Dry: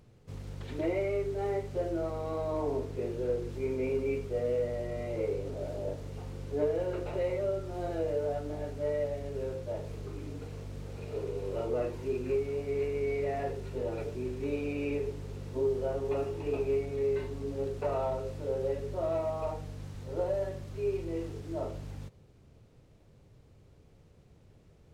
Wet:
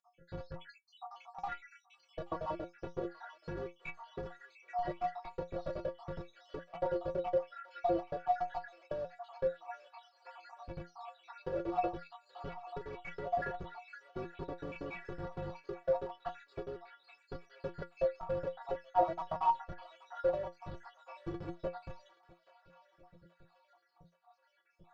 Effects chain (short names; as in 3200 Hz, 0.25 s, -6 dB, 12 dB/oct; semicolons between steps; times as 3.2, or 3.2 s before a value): random spectral dropouts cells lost 79%; in parallel at -8.5 dB: Schmitt trigger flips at -45 dBFS; on the sum: notch 2100 Hz, Q 20; on a send: thin delay 0.827 s, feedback 52%, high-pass 1400 Hz, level -16 dB; on the sum: compressor, threshold -37 dBFS, peak gain reduction 11 dB; LPF 4700 Hz 24 dB/oct; band shelf 990 Hz +8.5 dB; metallic resonator 170 Hz, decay 0.2 s, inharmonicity 0.008; gain +13 dB